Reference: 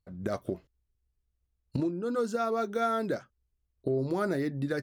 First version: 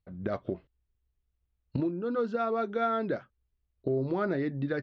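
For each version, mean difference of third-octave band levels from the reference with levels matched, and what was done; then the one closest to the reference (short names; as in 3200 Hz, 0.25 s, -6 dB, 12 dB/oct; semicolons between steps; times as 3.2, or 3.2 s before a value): 3.0 dB: LPF 3700 Hz 24 dB/oct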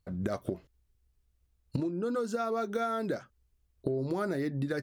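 1.5 dB: compressor 5:1, threshold -36 dBFS, peak gain reduction 11 dB; gain +6.5 dB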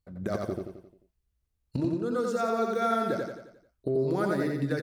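5.0 dB: feedback echo 88 ms, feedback 48%, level -3 dB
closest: second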